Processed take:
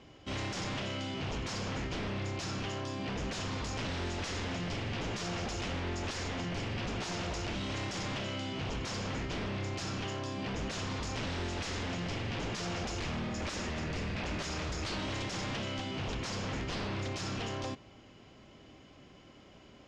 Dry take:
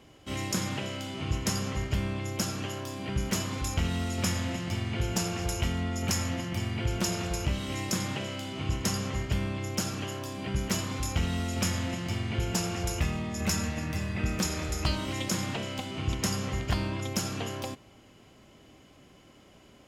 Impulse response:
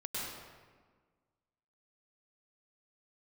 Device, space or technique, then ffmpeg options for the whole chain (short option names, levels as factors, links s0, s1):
synthesiser wavefolder: -af "aeval=exprs='0.0282*(abs(mod(val(0)/0.0282+3,4)-2)-1)':c=same,lowpass=f=6100:w=0.5412,lowpass=f=6100:w=1.3066"